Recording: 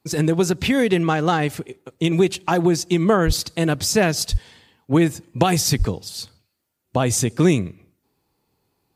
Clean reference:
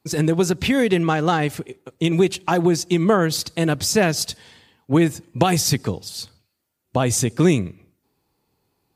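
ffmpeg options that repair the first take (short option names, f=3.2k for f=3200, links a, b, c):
-filter_complex "[0:a]asplit=3[a][b][c];[a]afade=t=out:st=3.26:d=0.02[d];[b]highpass=f=140:w=0.5412,highpass=f=140:w=1.3066,afade=t=in:st=3.26:d=0.02,afade=t=out:st=3.38:d=0.02[e];[c]afade=t=in:st=3.38:d=0.02[f];[d][e][f]amix=inputs=3:normalize=0,asplit=3[g][h][i];[g]afade=t=out:st=4.31:d=0.02[j];[h]highpass=f=140:w=0.5412,highpass=f=140:w=1.3066,afade=t=in:st=4.31:d=0.02,afade=t=out:st=4.43:d=0.02[k];[i]afade=t=in:st=4.43:d=0.02[l];[j][k][l]amix=inputs=3:normalize=0,asplit=3[m][n][o];[m]afade=t=out:st=5.78:d=0.02[p];[n]highpass=f=140:w=0.5412,highpass=f=140:w=1.3066,afade=t=in:st=5.78:d=0.02,afade=t=out:st=5.9:d=0.02[q];[o]afade=t=in:st=5.9:d=0.02[r];[p][q][r]amix=inputs=3:normalize=0"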